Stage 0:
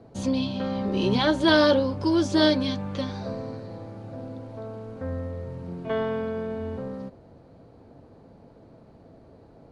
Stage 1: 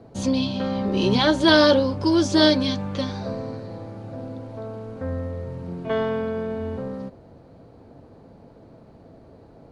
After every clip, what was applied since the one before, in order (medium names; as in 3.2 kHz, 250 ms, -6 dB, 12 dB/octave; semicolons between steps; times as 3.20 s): dynamic bell 5.8 kHz, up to +4 dB, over -46 dBFS, Q 1; trim +3 dB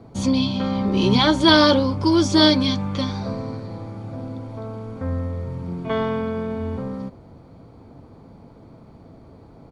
comb 0.9 ms, depth 35%; trim +2 dB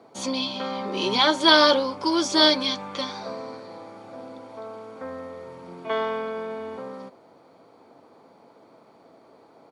high-pass 460 Hz 12 dB/octave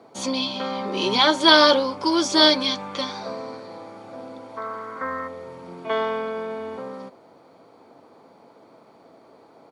time-frequency box 4.57–5.28 s, 960–2200 Hz +12 dB; trim +2 dB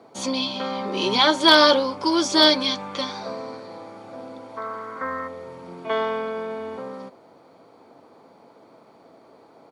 hard clipper -3.5 dBFS, distortion -34 dB